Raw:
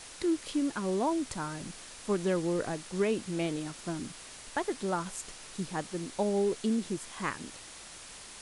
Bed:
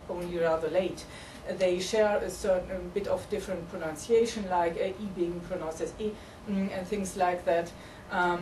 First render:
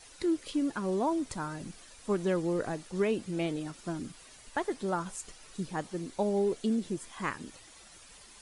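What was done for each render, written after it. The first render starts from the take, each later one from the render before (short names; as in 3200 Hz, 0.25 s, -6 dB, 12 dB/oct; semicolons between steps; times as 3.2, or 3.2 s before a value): denoiser 10 dB, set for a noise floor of -48 dBFS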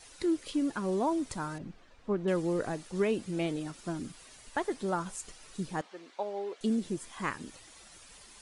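1.58–2.28 tape spacing loss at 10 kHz 30 dB; 5.81–6.61 BPF 640–3500 Hz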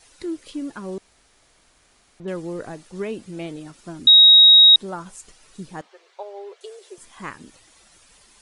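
0.98–2.2 room tone; 4.07–4.76 bleep 3790 Hz -6.5 dBFS; 5.89–6.98 brick-wall FIR high-pass 360 Hz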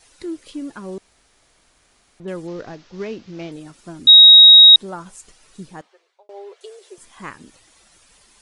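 2.47–3.52 CVSD 32 kbps; 4.05–4.76 doubler 14 ms -5.5 dB; 5.63–6.29 fade out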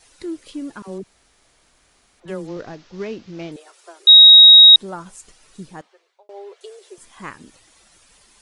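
0.82–2.57 dispersion lows, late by 59 ms, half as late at 510 Hz; 3.56–4.3 steep high-pass 370 Hz 96 dB/oct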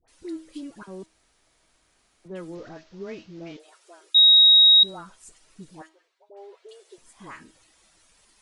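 resonator 320 Hz, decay 0.37 s, harmonics all, mix 60%; dispersion highs, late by 80 ms, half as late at 1100 Hz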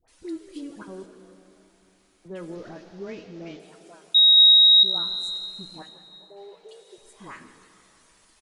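frequency-shifting echo 0.159 s, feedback 61%, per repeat +61 Hz, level -18 dB; plate-style reverb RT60 3.3 s, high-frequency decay 0.9×, DRR 10 dB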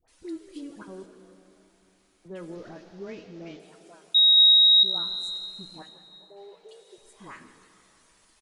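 gain -2.5 dB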